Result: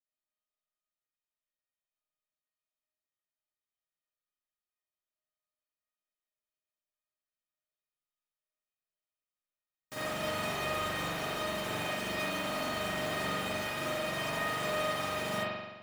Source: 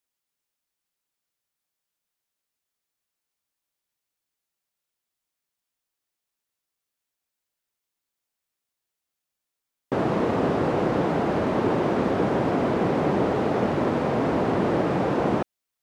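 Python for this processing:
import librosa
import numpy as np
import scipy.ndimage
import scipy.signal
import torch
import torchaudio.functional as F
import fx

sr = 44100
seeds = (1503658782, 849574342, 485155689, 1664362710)

y = fx.envelope_flatten(x, sr, power=0.3)
y = fx.comb_fb(y, sr, f0_hz=620.0, decay_s=0.16, harmonics='all', damping=0.0, mix_pct=90)
y = fx.rev_spring(y, sr, rt60_s=1.2, pass_ms=(42,), chirp_ms=30, drr_db=-9.0)
y = y * 10.0 ** (-6.0 / 20.0)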